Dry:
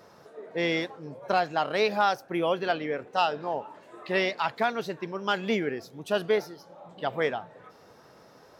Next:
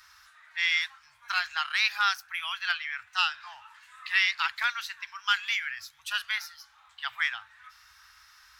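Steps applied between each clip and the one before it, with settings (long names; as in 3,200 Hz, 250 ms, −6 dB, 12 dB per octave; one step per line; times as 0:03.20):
inverse Chebyshev band-stop filter 160–540 Hz, stop band 60 dB
level +6 dB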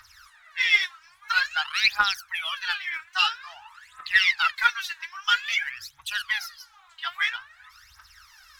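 phase shifter 0.5 Hz, delay 3.2 ms, feedback 78%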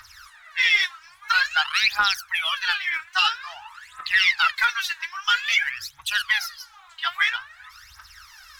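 brickwall limiter −15 dBFS, peak gain reduction 9.5 dB
level +5.5 dB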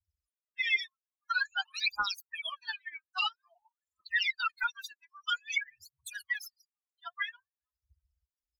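spectral dynamics exaggerated over time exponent 3
level −6 dB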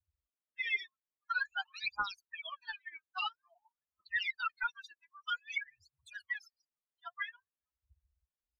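head-to-tape spacing loss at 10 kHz 24 dB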